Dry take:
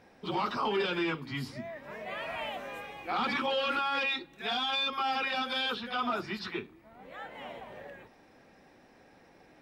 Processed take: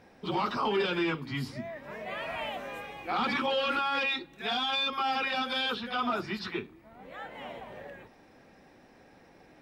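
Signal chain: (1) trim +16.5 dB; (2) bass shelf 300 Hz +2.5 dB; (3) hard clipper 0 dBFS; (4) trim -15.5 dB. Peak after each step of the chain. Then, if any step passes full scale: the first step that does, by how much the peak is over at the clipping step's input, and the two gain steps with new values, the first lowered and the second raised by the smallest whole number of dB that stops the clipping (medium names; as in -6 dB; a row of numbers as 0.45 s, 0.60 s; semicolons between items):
-2.5 dBFS, -2.0 dBFS, -2.0 dBFS, -17.5 dBFS; nothing clips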